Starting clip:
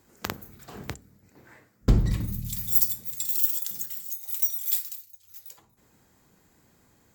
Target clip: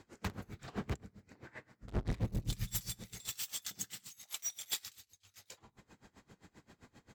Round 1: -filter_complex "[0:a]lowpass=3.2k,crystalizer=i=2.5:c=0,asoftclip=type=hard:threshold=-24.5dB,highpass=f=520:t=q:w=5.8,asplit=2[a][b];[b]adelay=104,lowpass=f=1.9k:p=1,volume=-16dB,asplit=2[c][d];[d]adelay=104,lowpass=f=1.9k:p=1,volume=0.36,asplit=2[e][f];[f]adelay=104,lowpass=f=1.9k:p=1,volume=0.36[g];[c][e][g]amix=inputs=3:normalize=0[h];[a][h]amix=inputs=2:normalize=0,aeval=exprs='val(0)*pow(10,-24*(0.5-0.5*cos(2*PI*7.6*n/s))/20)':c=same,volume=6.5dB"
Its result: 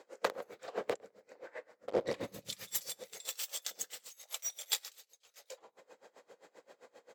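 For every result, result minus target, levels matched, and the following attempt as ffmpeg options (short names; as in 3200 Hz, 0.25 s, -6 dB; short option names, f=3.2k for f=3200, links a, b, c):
500 Hz band +10.5 dB; hard clip: distortion -5 dB
-filter_complex "[0:a]lowpass=3.2k,crystalizer=i=2.5:c=0,asoftclip=type=hard:threshold=-24.5dB,asplit=2[a][b];[b]adelay=104,lowpass=f=1.9k:p=1,volume=-16dB,asplit=2[c][d];[d]adelay=104,lowpass=f=1.9k:p=1,volume=0.36,asplit=2[e][f];[f]adelay=104,lowpass=f=1.9k:p=1,volume=0.36[g];[c][e][g]amix=inputs=3:normalize=0[h];[a][h]amix=inputs=2:normalize=0,aeval=exprs='val(0)*pow(10,-24*(0.5-0.5*cos(2*PI*7.6*n/s))/20)':c=same,volume=6.5dB"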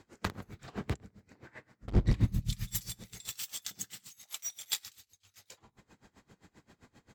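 hard clip: distortion -5 dB
-filter_complex "[0:a]lowpass=3.2k,crystalizer=i=2.5:c=0,asoftclip=type=hard:threshold=-35.5dB,asplit=2[a][b];[b]adelay=104,lowpass=f=1.9k:p=1,volume=-16dB,asplit=2[c][d];[d]adelay=104,lowpass=f=1.9k:p=1,volume=0.36,asplit=2[e][f];[f]adelay=104,lowpass=f=1.9k:p=1,volume=0.36[g];[c][e][g]amix=inputs=3:normalize=0[h];[a][h]amix=inputs=2:normalize=0,aeval=exprs='val(0)*pow(10,-24*(0.5-0.5*cos(2*PI*7.6*n/s))/20)':c=same,volume=6.5dB"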